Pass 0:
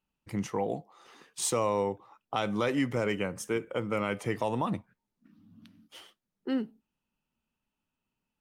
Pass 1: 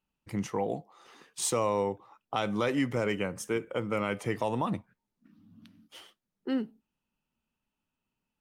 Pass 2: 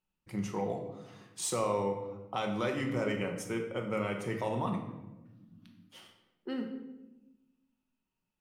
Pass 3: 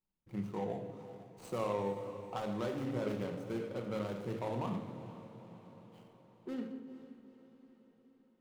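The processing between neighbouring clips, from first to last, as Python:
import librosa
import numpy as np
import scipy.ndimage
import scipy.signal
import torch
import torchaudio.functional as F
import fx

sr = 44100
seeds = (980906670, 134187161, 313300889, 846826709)

y1 = x
y2 = fx.room_shoebox(y1, sr, seeds[0], volume_m3=460.0, walls='mixed', distance_m=1.0)
y2 = y2 * librosa.db_to_amplitude(-5.0)
y3 = scipy.signal.medfilt(y2, 25)
y3 = fx.echo_diffused(y3, sr, ms=460, feedback_pct=57, wet_db=-13.5)
y3 = y3 * librosa.db_to_amplitude(-3.5)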